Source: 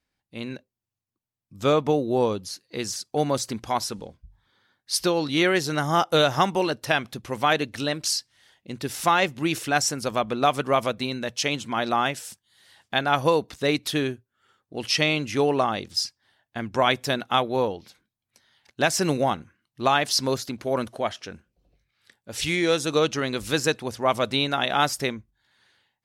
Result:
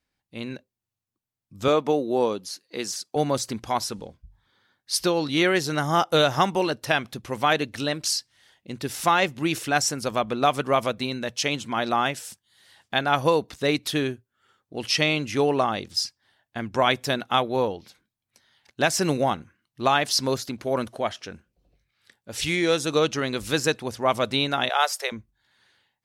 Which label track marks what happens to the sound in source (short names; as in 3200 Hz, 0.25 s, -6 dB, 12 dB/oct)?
1.680000	3.160000	HPF 210 Hz
24.690000	25.120000	steep high-pass 450 Hz 48 dB/oct